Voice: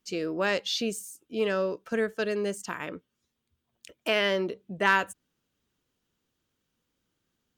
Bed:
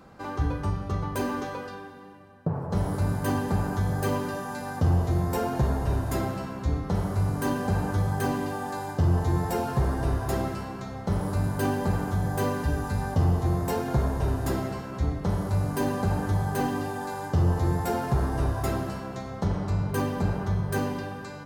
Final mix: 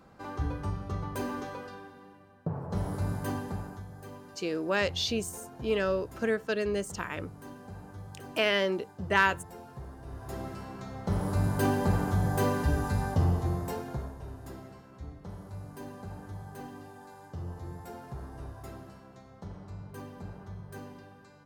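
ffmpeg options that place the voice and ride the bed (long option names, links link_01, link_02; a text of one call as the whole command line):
ffmpeg -i stem1.wav -i stem2.wav -filter_complex "[0:a]adelay=4300,volume=-1dB[link_01];[1:a]volume=13dB,afade=type=out:start_time=3.17:duration=0.7:silence=0.211349,afade=type=in:start_time=10.05:duration=1.48:silence=0.11885,afade=type=out:start_time=12.86:duration=1.3:silence=0.158489[link_02];[link_01][link_02]amix=inputs=2:normalize=0" out.wav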